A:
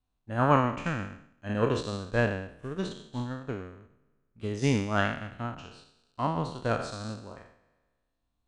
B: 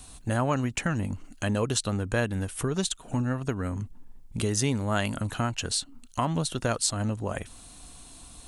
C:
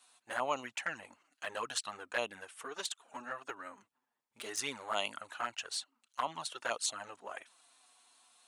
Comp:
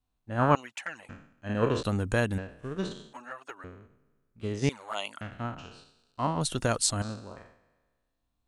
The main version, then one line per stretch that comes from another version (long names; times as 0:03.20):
A
0:00.55–0:01.09: punch in from C
0:01.83–0:02.38: punch in from B
0:03.13–0:03.64: punch in from C
0:04.69–0:05.21: punch in from C
0:06.41–0:07.02: punch in from B